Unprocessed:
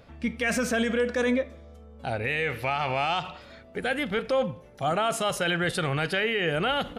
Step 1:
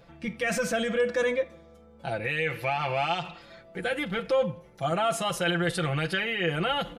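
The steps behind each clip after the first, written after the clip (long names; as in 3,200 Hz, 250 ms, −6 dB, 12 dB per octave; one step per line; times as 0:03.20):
comb filter 5.9 ms, depth 81%
level −3.5 dB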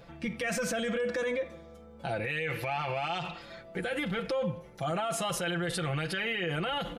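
brickwall limiter −26.5 dBFS, peak gain reduction 10.5 dB
level +2.5 dB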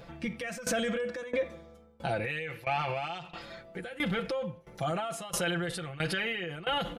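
shaped tremolo saw down 1.5 Hz, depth 90%
level +3.5 dB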